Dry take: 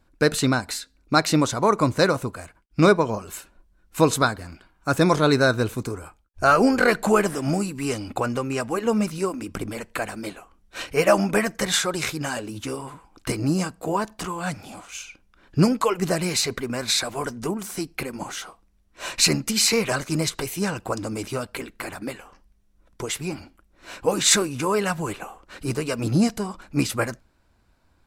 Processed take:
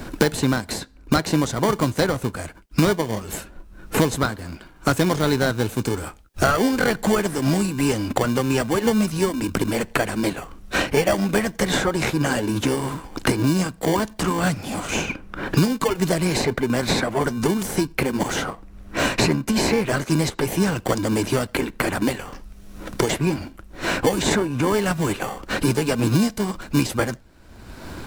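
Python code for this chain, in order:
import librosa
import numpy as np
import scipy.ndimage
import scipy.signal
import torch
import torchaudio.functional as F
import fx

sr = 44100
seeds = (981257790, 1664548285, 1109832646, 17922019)

p1 = fx.sample_hold(x, sr, seeds[0], rate_hz=1300.0, jitter_pct=0)
p2 = x + (p1 * 10.0 ** (-4.0 / 20.0))
p3 = fx.band_squash(p2, sr, depth_pct=100)
y = p3 * 10.0 ** (-1.0 / 20.0)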